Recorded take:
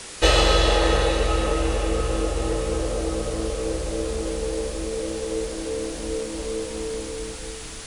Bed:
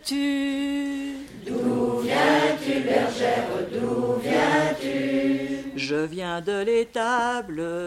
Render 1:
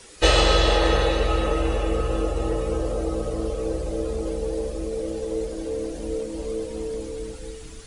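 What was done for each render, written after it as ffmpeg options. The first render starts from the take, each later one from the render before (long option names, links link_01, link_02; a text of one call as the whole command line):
ffmpeg -i in.wav -af "afftdn=noise_reduction=11:noise_floor=-36" out.wav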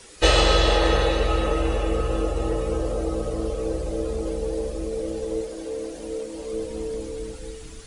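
ffmpeg -i in.wav -filter_complex "[0:a]asettb=1/sr,asplit=3[link_01][link_02][link_03];[link_01]atrim=end=5.414[link_04];[link_02]atrim=start=5.41:end=6.53,asetpts=PTS-STARTPTS,afade=type=in:duration=0.004:curve=qsin,afade=type=out:start_time=1.116:duration=0.004:curve=qsin,lowshelf=frequency=210:gain=-11[link_05];[link_03]atrim=start=6.526[link_06];[link_04][link_05]acrossfade=duration=0.004:curve1=hsin:curve2=qsin[link_07];[link_07][link_06]acrossfade=duration=0.004:curve1=qsin:curve2=hsin" out.wav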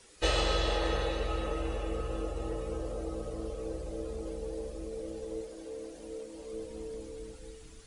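ffmpeg -i in.wav -af "volume=-11dB" out.wav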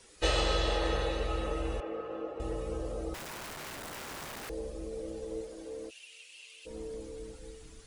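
ffmpeg -i in.wav -filter_complex "[0:a]asettb=1/sr,asplit=3[link_01][link_02][link_03];[link_01]atrim=end=1.804[link_04];[link_02]atrim=start=1.8:end=2.4,asetpts=PTS-STARTPTS,afade=type=in:duration=0.004:curve=qsin,afade=type=out:start_time=0.596:duration=0.004:curve=qsin,highpass=290,lowpass=2100[link_05];[link_03]atrim=start=2.396[link_06];[link_04][link_05]acrossfade=duration=0.004:curve1=hsin:curve2=qsin[link_07];[link_07][link_06]acrossfade=duration=0.004:curve1=qsin:curve2=hsin,asettb=1/sr,asplit=3[link_08][link_09][link_10];[link_08]atrim=end=3.144[link_11];[link_09]atrim=start=3.14:end=4.5,asetpts=PTS-STARTPTS,afade=type=in:duration=0.004:curve=qsin,afade=type=out:start_time=1.356:duration=0.004:curve=qsin,aeval=exprs='(mod(79.4*val(0)+1,2)-1)/79.4':channel_layout=same[link_12];[link_10]atrim=start=4.496[link_13];[link_11][link_12]acrossfade=duration=0.004:curve1=hsin:curve2=qsin[link_14];[link_14][link_13]acrossfade=duration=0.004:curve1=qsin:curve2=hsin,asplit=3[link_15][link_16][link_17];[link_15]afade=type=out:start_time=5.89:duration=0.02[link_18];[link_16]highpass=frequency=2700:width_type=q:width=8.7,afade=type=in:start_time=5.89:duration=0.02,afade=type=out:start_time=6.65:duration=0.02[link_19];[link_17]afade=type=in:start_time=6.65:duration=0.02[link_20];[link_18][link_19][link_20]amix=inputs=3:normalize=0" out.wav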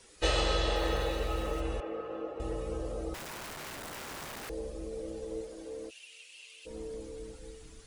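ffmpeg -i in.wav -filter_complex "[0:a]asettb=1/sr,asplit=3[link_01][link_02][link_03];[link_01]atrim=end=0.764[link_04];[link_02]atrim=start=0.76:end=1.61,asetpts=PTS-STARTPTS,afade=type=in:duration=0.004:curve=qsin,afade=type=out:start_time=0.846:duration=0.004:curve=qsin,aeval=exprs='val(0)*gte(abs(val(0)),0.00631)':channel_layout=same[link_05];[link_03]atrim=start=1.606[link_06];[link_04][link_05]acrossfade=duration=0.004:curve1=hsin:curve2=qsin[link_07];[link_07][link_06]acrossfade=duration=0.004:curve1=qsin:curve2=hsin" out.wav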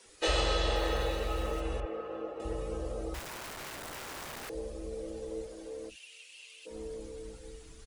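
ffmpeg -i in.wav -filter_complex "[0:a]acrossover=split=190[link_01][link_02];[link_01]adelay=50[link_03];[link_03][link_02]amix=inputs=2:normalize=0" out.wav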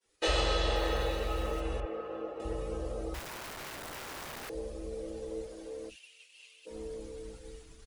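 ffmpeg -i in.wav -af "agate=range=-33dB:threshold=-47dB:ratio=3:detection=peak,equalizer=frequency=7900:width=1.5:gain=-2" out.wav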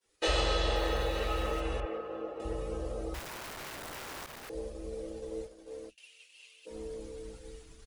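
ffmpeg -i in.wav -filter_complex "[0:a]asettb=1/sr,asplit=3[link_01][link_02][link_03];[link_01]atrim=end=1.154[link_04];[link_02]atrim=start=1.15:end=1.98,asetpts=PTS-STARTPTS,afade=type=in:duration=0.004:curve=qsin,afade=type=out:start_time=0.826:duration=0.004:curve=qsin,equalizer=frequency=2200:width_type=o:width=2.9:gain=4[link_05];[link_03]atrim=start=1.976[link_06];[link_04][link_05]acrossfade=duration=0.004:curve1=hsin:curve2=qsin[link_07];[link_07][link_06]acrossfade=duration=0.004:curve1=qsin:curve2=hsin,asettb=1/sr,asplit=3[link_08][link_09][link_10];[link_08]atrim=end=4.264[link_11];[link_09]atrim=start=4.26:end=5.98,asetpts=PTS-STARTPTS,afade=type=in:duration=0.004:curve=qsin,afade=type=out:start_time=1.716:duration=0.004:curve=qsin,agate=range=-33dB:threshold=-40dB:ratio=3:release=100:detection=peak[link_12];[link_10]atrim=start=5.976[link_13];[link_11][link_12]acrossfade=duration=0.004:curve1=hsin:curve2=qsin[link_14];[link_14][link_13]acrossfade=duration=0.004:curve1=qsin:curve2=hsin" out.wav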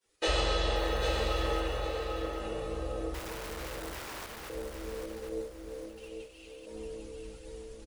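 ffmpeg -i in.wav -af "aecho=1:1:797|1594|2391|3188:0.501|0.15|0.0451|0.0135" out.wav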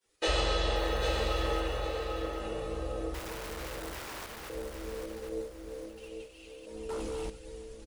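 ffmpeg -i in.wav -filter_complex "[0:a]asettb=1/sr,asplit=3[link_01][link_02][link_03];[link_01]atrim=end=6.894[link_04];[link_02]atrim=start=6.89:end=7.3,asetpts=PTS-STARTPTS,afade=type=in:duration=0.004:curve=qsin,afade=type=out:start_time=0.406:duration=0.004:curve=qsin,aeval=exprs='0.0237*sin(PI/2*2.24*val(0)/0.0237)':channel_layout=same[link_05];[link_03]atrim=start=7.296[link_06];[link_04][link_05]acrossfade=duration=0.004:curve1=hsin:curve2=qsin[link_07];[link_07][link_06]acrossfade=duration=0.004:curve1=qsin:curve2=hsin" out.wav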